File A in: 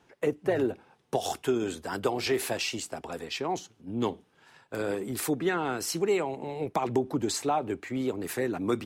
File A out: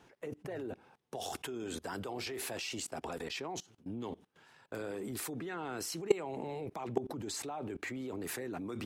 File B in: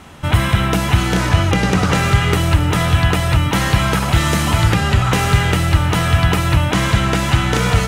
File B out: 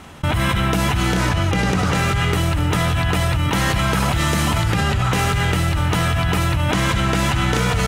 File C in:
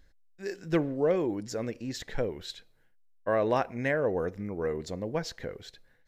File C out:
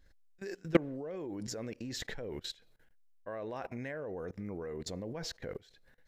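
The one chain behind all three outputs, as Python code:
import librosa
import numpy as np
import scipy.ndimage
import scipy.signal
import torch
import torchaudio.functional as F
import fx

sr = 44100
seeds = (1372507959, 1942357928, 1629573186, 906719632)

y = fx.level_steps(x, sr, step_db=22)
y = F.gain(torch.from_numpy(y), 4.0).numpy()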